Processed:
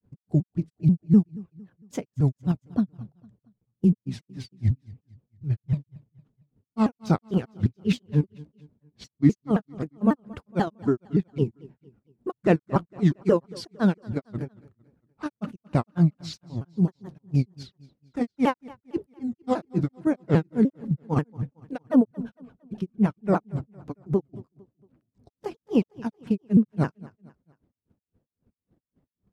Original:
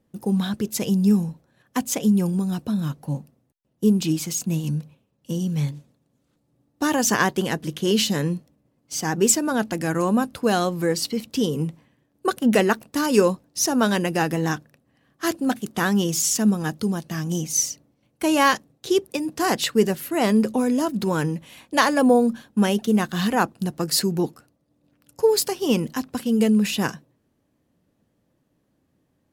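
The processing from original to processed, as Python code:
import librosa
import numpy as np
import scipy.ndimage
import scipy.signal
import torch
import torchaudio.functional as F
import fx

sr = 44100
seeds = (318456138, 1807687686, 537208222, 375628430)

p1 = fx.pitch_ramps(x, sr, semitones=-5.5, every_ms=157)
p2 = fx.lowpass(p1, sr, hz=1100.0, slope=6)
p3 = fx.low_shelf(p2, sr, hz=230.0, db=6.5)
p4 = fx.level_steps(p3, sr, step_db=22)
p5 = p3 + (p4 * 10.0 ** (1.0 / 20.0))
p6 = fx.granulator(p5, sr, seeds[0], grain_ms=165.0, per_s=3.7, spray_ms=100.0, spread_st=3)
p7 = p6 + fx.echo_feedback(p6, sr, ms=228, feedback_pct=41, wet_db=-21.5, dry=0)
y = p7 * 10.0 ** (-3.0 / 20.0)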